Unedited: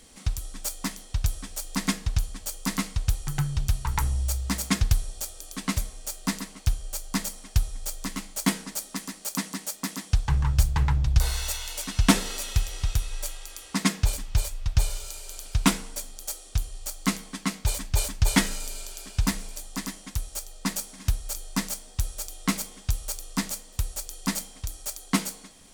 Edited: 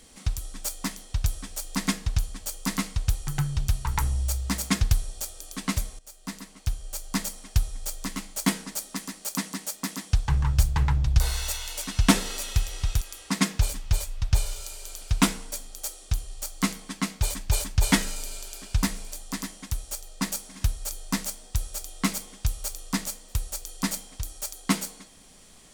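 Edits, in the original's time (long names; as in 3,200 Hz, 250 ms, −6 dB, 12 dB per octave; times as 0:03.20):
0:05.99–0:07.17: fade in, from −16 dB
0:13.01–0:13.45: remove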